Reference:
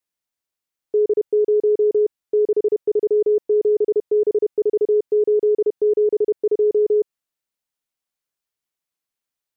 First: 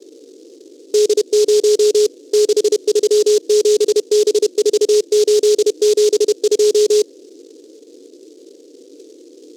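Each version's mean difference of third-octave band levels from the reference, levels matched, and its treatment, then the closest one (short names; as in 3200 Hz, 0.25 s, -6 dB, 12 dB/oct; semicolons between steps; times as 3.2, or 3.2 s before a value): 10.5 dB: HPF 180 Hz 24 dB/oct; band noise 280–480 Hz -46 dBFS; noise-modulated delay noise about 5200 Hz, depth 0.08 ms; gain +4.5 dB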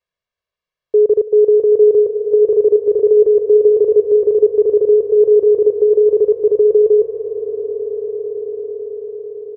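1.5 dB: air absorption 200 m; comb 1.8 ms, depth 90%; swelling echo 0.111 s, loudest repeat 8, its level -14 dB; gain +4.5 dB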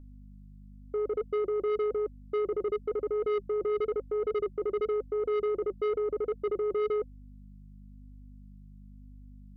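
7.0 dB: hum 50 Hz, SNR 22 dB; flange 0.98 Hz, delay 3.4 ms, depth 2.4 ms, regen +45%; soft clip -24 dBFS, distortion -10 dB; gain -2 dB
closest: second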